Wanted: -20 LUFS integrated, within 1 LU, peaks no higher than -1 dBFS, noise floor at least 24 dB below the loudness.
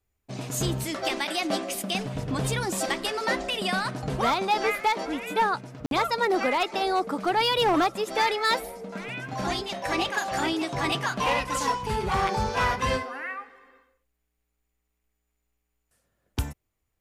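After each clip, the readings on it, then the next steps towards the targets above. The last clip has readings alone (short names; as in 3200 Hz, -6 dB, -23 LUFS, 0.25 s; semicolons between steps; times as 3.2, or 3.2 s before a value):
clipped 0.5%; flat tops at -17.0 dBFS; dropouts 1; longest dropout 52 ms; loudness -26.5 LUFS; peak -17.0 dBFS; loudness target -20.0 LUFS
-> clip repair -17 dBFS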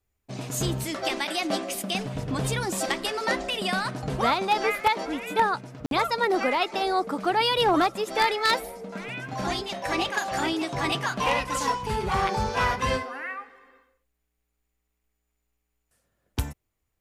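clipped 0.0%; dropouts 1; longest dropout 52 ms
-> interpolate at 5.86, 52 ms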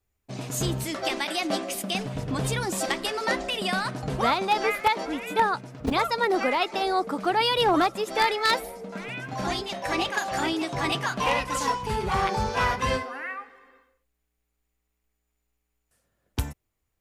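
dropouts 0; loudness -26.5 LUFS; peak -8.0 dBFS; loudness target -20.0 LUFS
-> gain +6.5 dB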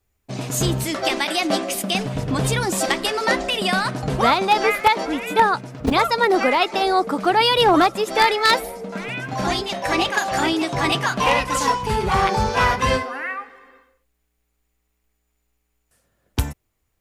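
loudness -20.0 LUFS; peak -1.5 dBFS; noise floor -72 dBFS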